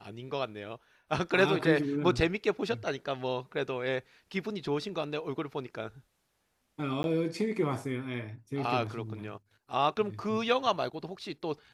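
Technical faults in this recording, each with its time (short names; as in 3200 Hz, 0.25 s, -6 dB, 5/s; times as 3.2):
7.03–7.04 gap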